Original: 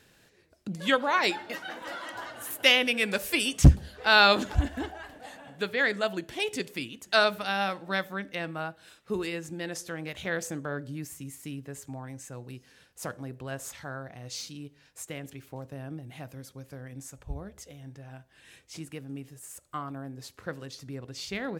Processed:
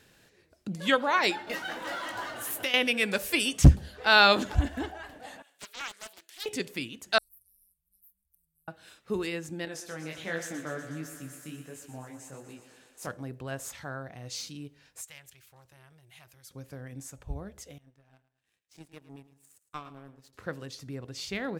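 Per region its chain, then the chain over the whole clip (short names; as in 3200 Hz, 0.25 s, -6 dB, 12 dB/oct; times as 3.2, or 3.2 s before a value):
1.47–2.74 G.711 law mismatch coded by mu + compressor 16:1, threshold -26 dBFS + doubler 19 ms -10.5 dB
5.42–6.46 HPF 300 Hz + differentiator + Doppler distortion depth 0.6 ms
7.18–8.68 inverse Chebyshev band-stop 230–3500 Hz, stop band 70 dB + bell 890 Hz -13.5 dB 1.2 oct
9.65–13.07 chorus 1.4 Hz, delay 18.5 ms, depth 7.8 ms + bell 77 Hz -12 dB 0.75 oct + thinning echo 0.122 s, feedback 76%, high-pass 220 Hz, level -10 dB
15.01–16.51 passive tone stack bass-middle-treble 10-0-10 + core saturation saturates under 3300 Hz
17.78–20.33 power-law curve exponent 2 + feedback echo 0.109 s, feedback 38%, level -15 dB
whole clip: dry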